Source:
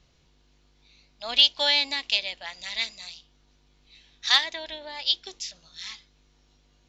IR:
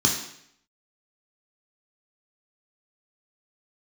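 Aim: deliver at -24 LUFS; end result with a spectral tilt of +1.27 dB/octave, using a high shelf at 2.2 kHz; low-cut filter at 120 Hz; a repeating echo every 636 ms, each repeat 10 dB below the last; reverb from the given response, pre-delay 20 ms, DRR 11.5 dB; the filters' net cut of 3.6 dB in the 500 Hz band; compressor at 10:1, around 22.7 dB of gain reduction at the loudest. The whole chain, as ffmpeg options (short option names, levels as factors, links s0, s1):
-filter_complex "[0:a]highpass=120,equalizer=f=500:t=o:g=-5,highshelf=f=2200:g=5.5,acompressor=threshold=0.0224:ratio=10,aecho=1:1:636|1272|1908|2544:0.316|0.101|0.0324|0.0104,asplit=2[s0][s1];[1:a]atrim=start_sample=2205,adelay=20[s2];[s1][s2]afir=irnorm=-1:irlink=0,volume=0.0596[s3];[s0][s3]amix=inputs=2:normalize=0,volume=4.47"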